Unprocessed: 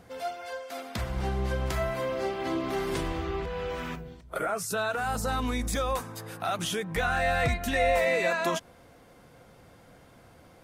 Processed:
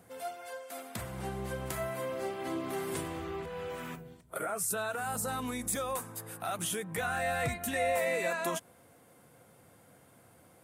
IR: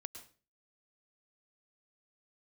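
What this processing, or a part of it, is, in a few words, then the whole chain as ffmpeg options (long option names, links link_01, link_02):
budget condenser microphone: -af "highpass=frequency=85:width=0.5412,highpass=frequency=85:width=1.3066,highshelf=frequency=7000:width_type=q:width=1.5:gain=8.5,volume=-5.5dB"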